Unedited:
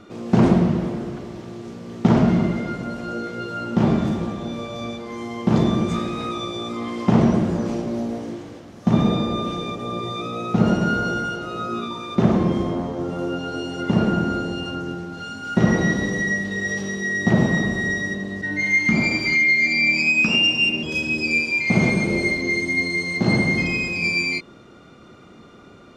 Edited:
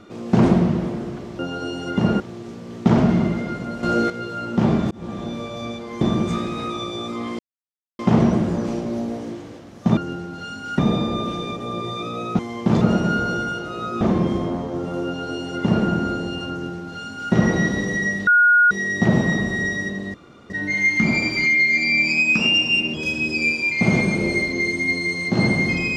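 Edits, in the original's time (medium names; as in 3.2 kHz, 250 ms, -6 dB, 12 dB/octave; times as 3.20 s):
3.02–3.29 s: gain +9 dB
4.10–4.38 s: fade in
5.20–5.62 s: move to 10.58 s
7.00 s: insert silence 0.60 s
11.78–12.26 s: delete
13.31–14.12 s: copy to 1.39 s
14.76–15.58 s: copy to 8.98 s
16.52–16.96 s: bleep 1.44 kHz -10.5 dBFS
18.39 s: insert room tone 0.36 s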